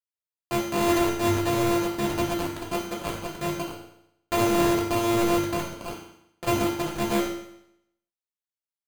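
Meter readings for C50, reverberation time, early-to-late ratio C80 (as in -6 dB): 4.0 dB, 0.75 s, 6.5 dB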